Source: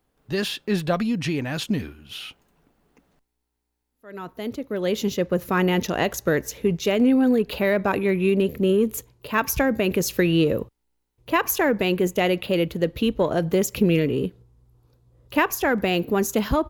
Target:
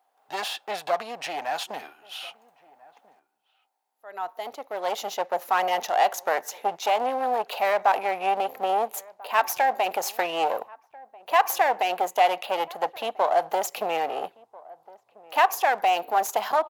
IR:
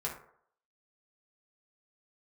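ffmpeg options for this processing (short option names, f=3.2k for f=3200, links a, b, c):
-filter_complex "[0:a]aeval=exprs='clip(val(0),-1,0.0355)':c=same,highpass=f=760:t=q:w=6,asplit=2[a][b];[b]adelay=1341,volume=-22dB,highshelf=f=4k:g=-30.2[c];[a][c]amix=inputs=2:normalize=0,volume=-2dB"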